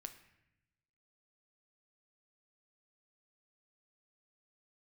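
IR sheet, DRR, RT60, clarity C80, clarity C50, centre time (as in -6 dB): 7.0 dB, 0.85 s, 14.0 dB, 11.5 dB, 11 ms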